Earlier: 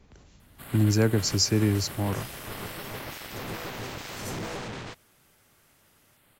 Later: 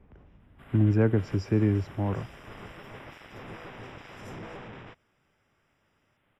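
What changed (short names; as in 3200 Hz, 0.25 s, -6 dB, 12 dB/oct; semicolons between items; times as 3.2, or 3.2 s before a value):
speech: add LPF 1400 Hz 6 dB/oct; first sound -6.5 dB; master: add polynomial smoothing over 25 samples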